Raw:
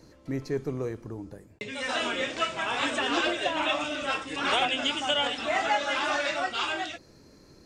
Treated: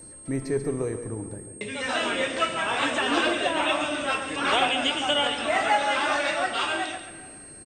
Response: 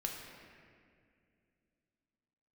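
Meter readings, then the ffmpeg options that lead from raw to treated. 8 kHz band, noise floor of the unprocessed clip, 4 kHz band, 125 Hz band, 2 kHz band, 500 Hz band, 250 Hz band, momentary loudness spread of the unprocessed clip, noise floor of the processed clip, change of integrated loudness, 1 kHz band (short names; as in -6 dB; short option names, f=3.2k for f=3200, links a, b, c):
+6.0 dB, -55 dBFS, +2.0 dB, +3.0 dB, +3.0 dB, +3.5 dB, +3.5 dB, 11 LU, -45 dBFS, +3.0 dB, +3.5 dB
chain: -filter_complex "[0:a]aecho=1:1:138:0.299,aeval=exprs='val(0)+0.00708*sin(2*PI*8500*n/s)':c=same,asplit=2[a][b];[1:a]atrim=start_sample=2205,lowpass=4.1k[c];[b][c]afir=irnorm=-1:irlink=0,volume=-6dB[d];[a][d]amix=inputs=2:normalize=0"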